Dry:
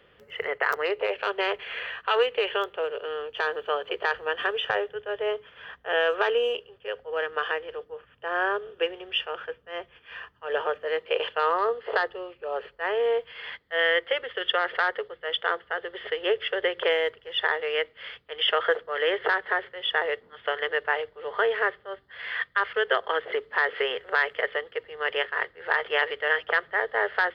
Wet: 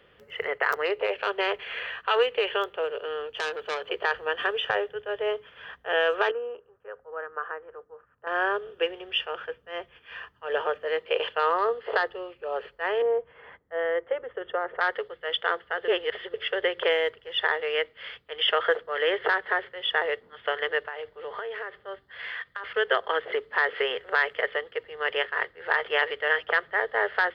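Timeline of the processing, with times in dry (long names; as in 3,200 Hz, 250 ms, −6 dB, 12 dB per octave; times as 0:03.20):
0:03.27–0:03.86: saturating transformer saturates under 2,800 Hz
0:06.31–0:08.27: transistor ladder low-pass 1,600 Hz, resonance 45%
0:13.02–0:14.81: low-pass filter 1,000 Hz
0:15.88–0:16.34: reverse
0:20.81–0:22.64: downward compressor 8 to 1, threshold −31 dBFS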